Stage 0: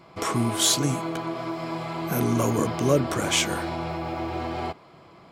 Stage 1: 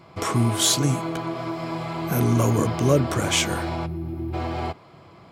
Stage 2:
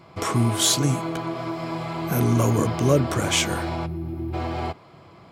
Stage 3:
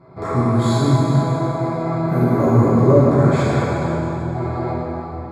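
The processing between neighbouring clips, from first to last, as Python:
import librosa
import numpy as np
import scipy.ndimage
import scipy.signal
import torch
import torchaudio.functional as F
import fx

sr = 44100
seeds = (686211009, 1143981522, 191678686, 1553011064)

y1 = fx.spec_box(x, sr, start_s=3.86, length_s=0.48, low_hz=390.0, high_hz=10000.0, gain_db=-18)
y1 = fx.peak_eq(y1, sr, hz=97.0, db=7.5, octaves=0.99)
y1 = y1 * 10.0 ** (1.0 / 20.0)
y2 = y1
y3 = scipy.signal.lfilter(np.full(15, 1.0 / 15), 1.0, y2)
y3 = fx.rev_plate(y3, sr, seeds[0], rt60_s=3.1, hf_ratio=0.85, predelay_ms=0, drr_db=-8.5)
y3 = y3 * 10.0 ** (-1.0 / 20.0)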